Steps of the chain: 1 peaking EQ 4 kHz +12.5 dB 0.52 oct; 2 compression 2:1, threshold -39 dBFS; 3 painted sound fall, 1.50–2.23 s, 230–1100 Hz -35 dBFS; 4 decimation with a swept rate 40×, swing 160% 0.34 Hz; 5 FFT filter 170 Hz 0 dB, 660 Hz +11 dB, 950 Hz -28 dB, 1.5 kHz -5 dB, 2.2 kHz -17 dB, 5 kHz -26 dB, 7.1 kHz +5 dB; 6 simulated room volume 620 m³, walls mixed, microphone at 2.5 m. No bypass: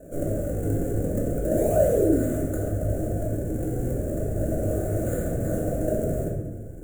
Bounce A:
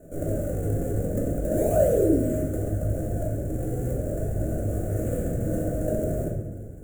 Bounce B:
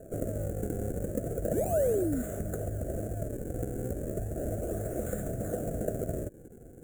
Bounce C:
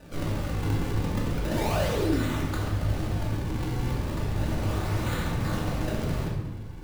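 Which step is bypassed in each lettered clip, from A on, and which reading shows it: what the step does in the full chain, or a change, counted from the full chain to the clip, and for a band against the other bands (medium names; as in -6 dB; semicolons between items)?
1, 2 kHz band -1.5 dB; 6, echo-to-direct 4.5 dB to none; 5, crest factor change -2.5 dB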